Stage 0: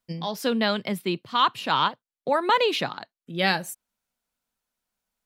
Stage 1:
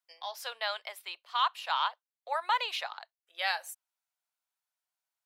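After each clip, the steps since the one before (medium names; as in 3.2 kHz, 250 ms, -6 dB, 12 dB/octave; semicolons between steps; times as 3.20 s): steep high-pass 650 Hz 36 dB/octave; trim -7 dB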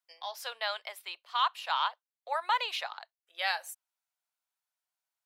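no audible change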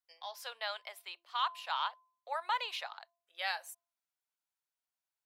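de-hum 342 Hz, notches 3; trim -5 dB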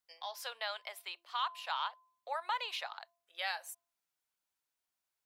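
compression 1.5:1, threshold -45 dBFS, peak gain reduction 6.5 dB; trim +3.5 dB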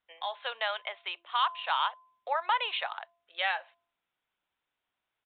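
resampled via 8 kHz; trim +8 dB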